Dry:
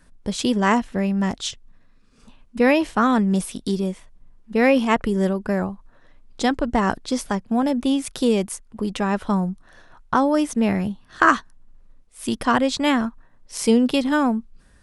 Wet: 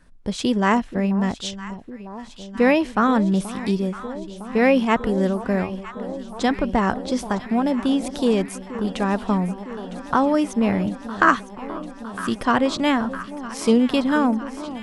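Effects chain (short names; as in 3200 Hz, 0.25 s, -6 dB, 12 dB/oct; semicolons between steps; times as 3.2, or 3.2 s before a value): high shelf 6600 Hz -8 dB; echo with dull and thin repeats by turns 0.479 s, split 980 Hz, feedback 87%, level -13.5 dB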